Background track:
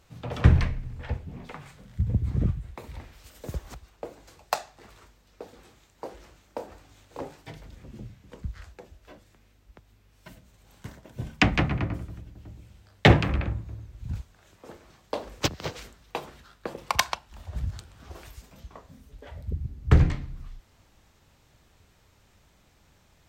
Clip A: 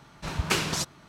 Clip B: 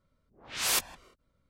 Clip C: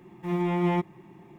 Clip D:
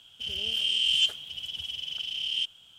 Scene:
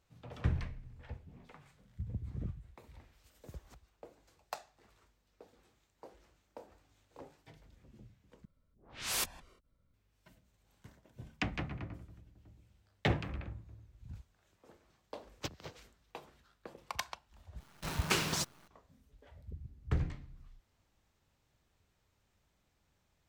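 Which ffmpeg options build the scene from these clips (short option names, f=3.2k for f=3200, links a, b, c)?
-filter_complex "[0:a]volume=-15dB[a];[2:a]lowshelf=f=170:g=8.5[b];[1:a]acrusher=bits=7:dc=4:mix=0:aa=0.000001[c];[a]asplit=3[d][e][f];[d]atrim=end=8.454[g];[b]atrim=end=1.49,asetpts=PTS-STARTPTS,volume=-7dB[h];[e]atrim=start=9.936:end=17.604[i];[c]atrim=end=1.08,asetpts=PTS-STARTPTS,volume=-5.5dB[j];[f]atrim=start=18.676[k];[g][h]acrossfade=d=0.004:c1=hsin:c2=hsin[l];[l][i]acrossfade=d=0.004:c1=hsin:c2=hsin[m];[m][j]acrossfade=d=0.004:c1=hsin:c2=hsin[n];[n][k]acrossfade=d=0.004:c1=hsin:c2=hsin"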